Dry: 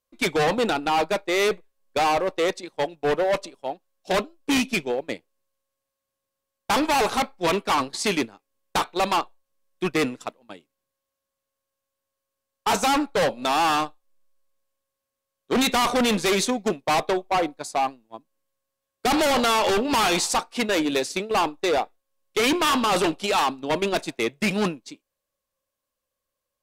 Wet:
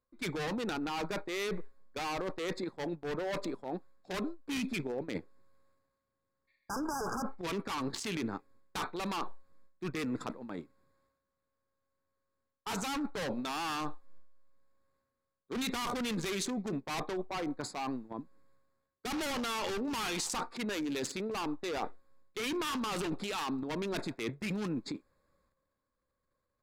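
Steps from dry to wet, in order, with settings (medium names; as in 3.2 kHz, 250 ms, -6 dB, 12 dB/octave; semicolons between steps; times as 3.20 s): local Wiener filter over 15 samples; peaking EQ 660 Hz -9 dB 1 oct; transient shaper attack -4 dB, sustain +11 dB; in parallel at 0 dB: peak limiter -26 dBFS, peak gain reduction 14.5 dB; on the sum: spectral replace 6.51–7.30 s, 1.7–4.8 kHz after; reverse; compression 5:1, threshold -35 dBFS, peak gain reduction 15.5 dB; reverse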